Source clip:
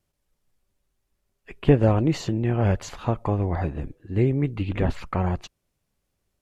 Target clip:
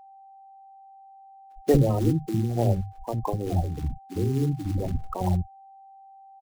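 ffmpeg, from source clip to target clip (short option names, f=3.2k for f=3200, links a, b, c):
-filter_complex "[0:a]aemphasis=mode=reproduction:type=cd,bandreject=f=50:t=h:w=6,bandreject=f=100:t=h:w=6,bandreject=f=150:t=h:w=6,bandreject=f=200:t=h:w=6,afftfilt=real='re*gte(hypot(re,im),0.112)':imag='im*gte(hypot(re,im),0.112)':win_size=1024:overlap=0.75,highshelf=f=3.1k:g=7,asplit=2[a][b];[b]acompressor=threshold=-27dB:ratio=20,volume=-2dB[c];[a][c]amix=inputs=2:normalize=0,acrusher=bits=6:mode=log:mix=0:aa=0.000001,tremolo=f=3.4:d=0.57,acrossover=split=280[d][e];[d]adelay=60[f];[f][e]amix=inputs=2:normalize=0,aeval=exprs='val(0)+0.00447*sin(2*PI*780*n/s)':c=same"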